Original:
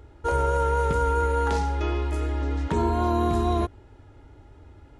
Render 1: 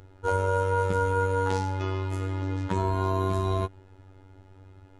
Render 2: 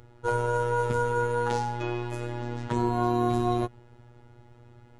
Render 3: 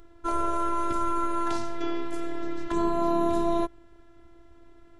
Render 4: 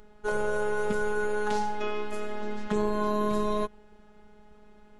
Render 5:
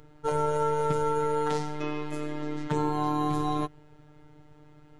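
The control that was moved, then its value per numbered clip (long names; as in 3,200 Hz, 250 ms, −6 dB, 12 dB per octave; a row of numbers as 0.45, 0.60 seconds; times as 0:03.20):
phases set to zero, frequency: 95, 120, 340, 210, 150 Hertz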